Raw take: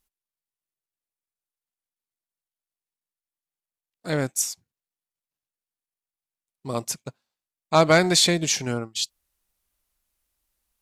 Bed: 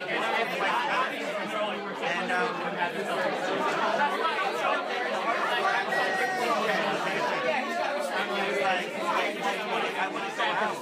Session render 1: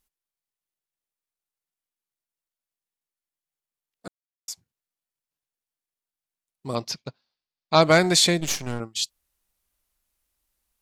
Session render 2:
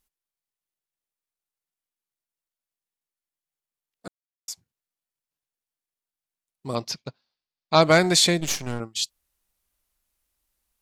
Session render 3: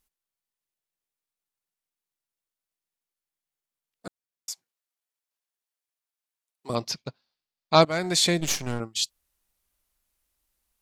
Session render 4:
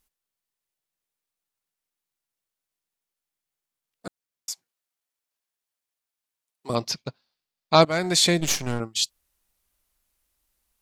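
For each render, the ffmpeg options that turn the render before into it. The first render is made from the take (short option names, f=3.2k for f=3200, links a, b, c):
-filter_complex "[0:a]asettb=1/sr,asplit=3[a][b][c];[a]atrim=end=6.754[d];[b]atrim=start=6.75:end=7.82,asetpts=PTS-STARTPTS,afade=t=in:d=0.004:c=qsin,afade=t=out:st=1.066:d=0.004:c=qsin,highshelf=f=6.3k:t=q:w=3:g=-10.5[e];[c]atrim=start=7.816[f];[d][e]acrossfade=d=0.004:c1=hsin:c2=qsin[g];[g][f]acrossfade=d=0.004:c1=qsin:c2=hsin,asettb=1/sr,asplit=3[h][i][j];[h]atrim=end=8.404[k];[i]atrim=start=8.4:end=8.8,asetpts=PTS-STARTPTS,afade=t=in:d=0.004:c=qsin,afade=t=out:st=0.396:d=0.004:c=qsin,aeval=exprs='if(lt(val(0),0),0.251*val(0),val(0))':c=same[l];[j]atrim=start=8.796[m];[k][l]acrossfade=d=0.004:c1=hsin:c2=qsin[n];[n][m]acrossfade=d=0.004:c1=qsin:c2=hsin,asplit=3[o][p][q];[o]atrim=end=4.08,asetpts=PTS-STARTPTS,afade=t=out:st=4.076:d=0.004:c=hsin[r];[p]atrim=start=4.08:end=4.48,asetpts=PTS-STARTPTS,volume=0[s];[q]atrim=start=4.48,asetpts=PTS-STARTPTS,afade=t=in:d=0.004:c=hsin[t];[r][s][t]concat=n=3:v=0:a=1"
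-af anull
-filter_complex "[0:a]asettb=1/sr,asplit=3[a][b][c];[a]atrim=end=4.524[d];[b]atrim=start=4.52:end=6.7,asetpts=PTS-STARTPTS,afade=t=in:d=0.004:c=qsin,afade=t=out:st=2.176:d=0.004:c=qsin,highpass=490[e];[c]atrim=start=6.696[f];[d][e]acrossfade=d=0.004:c1=hsin:c2=qsin[g];[g][f]acrossfade=d=0.004:c1=qsin:c2=hsin,asplit=2[h][i];[h]atrim=end=7.85,asetpts=PTS-STARTPTS,afade=t=out:st=7.846:d=0.004:c=hsin:silence=0.125893[j];[i]atrim=start=7.85,asetpts=PTS-STARTPTS,afade=t=in:d=0.59:silence=0.125893[k];[j][k]concat=n=2:v=0:a=1"
-af "volume=2.5dB,alimiter=limit=-3dB:level=0:latency=1"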